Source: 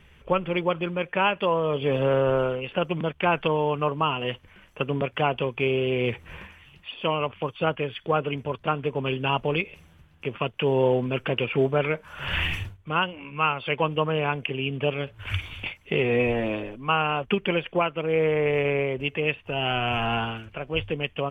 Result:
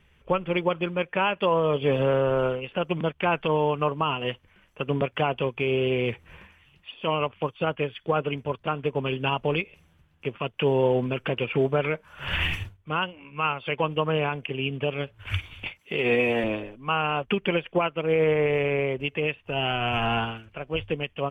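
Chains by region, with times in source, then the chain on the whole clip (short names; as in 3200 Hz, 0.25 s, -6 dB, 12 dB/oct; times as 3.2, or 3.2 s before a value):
15.79–16.44 HPF 160 Hz + high shelf 3000 Hz +9 dB
whole clip: limiter -15.5 dBFS; upward expander 1.5:1, over -41 dBFS; gain +3 dB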